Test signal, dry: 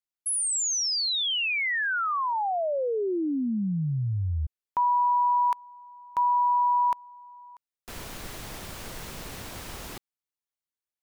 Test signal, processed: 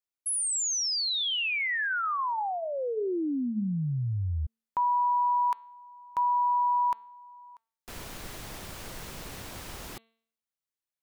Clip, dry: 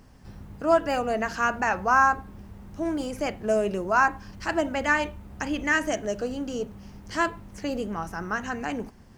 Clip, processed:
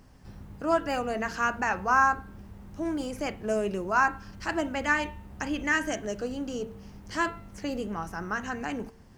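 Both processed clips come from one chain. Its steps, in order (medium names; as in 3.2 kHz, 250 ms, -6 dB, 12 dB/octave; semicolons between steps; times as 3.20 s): dynamic bell 630 Hz, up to -4 dB, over -37 dBFS, Q 3; de-hum 226 Hz, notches 19; trim -2 dB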